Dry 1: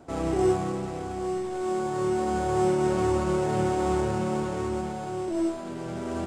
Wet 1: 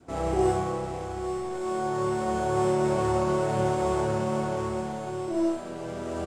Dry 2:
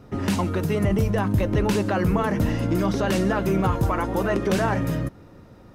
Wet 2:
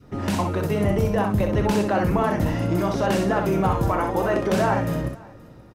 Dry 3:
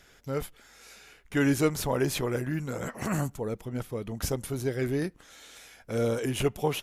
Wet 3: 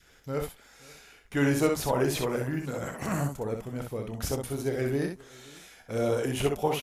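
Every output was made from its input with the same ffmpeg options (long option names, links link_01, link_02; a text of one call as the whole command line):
ffmpeg -i in.wav -filter_complex "[0:a]asplit=2[link_01][link_02];[link_02]aecho=0:1:527:0.0668[link_03];[link_01][link_03]amix=inputs=2:normalize=0,adynamicequalizer=threshold=0.0158:dfrequency=720:dqfactor=1.2:tfrequency=720:tqfactor=1.2:attack=5:release=100:ratio=0.375:range=2.5:mode=boostabove:tftype=bell,asplit=2[link_04][link_05];[link_05]aecho=0:1:29|63:0.266|0.562[link_06];[link_04][link_06]amix=inputs=2:normalize=0,volume=-2dB" out.wav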